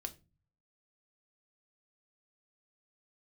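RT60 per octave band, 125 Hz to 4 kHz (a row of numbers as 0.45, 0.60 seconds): 0.85, 0.55, 0.35, 0.25, 0.25, 0.20 seconds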